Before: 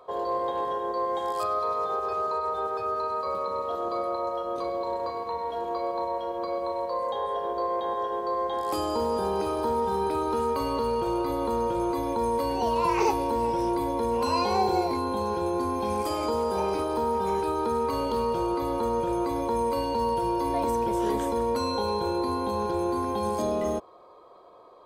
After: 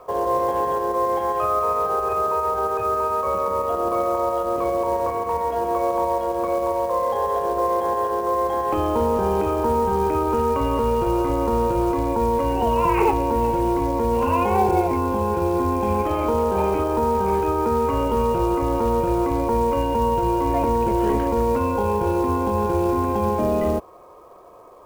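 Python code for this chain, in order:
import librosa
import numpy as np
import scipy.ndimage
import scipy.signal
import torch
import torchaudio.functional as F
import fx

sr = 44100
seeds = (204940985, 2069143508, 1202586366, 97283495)

p1 = scipy.signal.sosfilt(scipy.signal.butter(16, 3000.0, 'lowpass', fs=sr, output='sos'), x)
p2 = fx.low_shelf(p1, sr, hz=110.0, db=11.0)
p3 = fx.rider(p2, sr, range_db=10, speed_s=2.0)
p4 = p2 + (p3 * librosa.db_to_amplitude(2.0))
p5 = fx.quant_companded(p4, sr, bits=6)
y = p5 * librosa.db_to_amplitude(-1.5)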